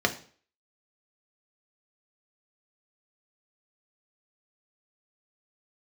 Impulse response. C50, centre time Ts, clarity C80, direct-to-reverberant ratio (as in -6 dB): 14.0 dB, 8 ms, 18.5 dB, 3.5 dB